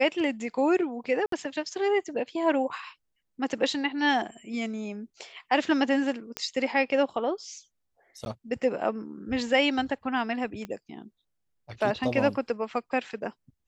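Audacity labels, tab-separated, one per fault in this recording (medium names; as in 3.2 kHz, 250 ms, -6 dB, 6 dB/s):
1.260000	1.320000	dropout 63 ms
6.370000	6.370000	pop -13 dBFS
8.250000	8.260000	dropout
10.650000	10.650000	pop -23 dBFS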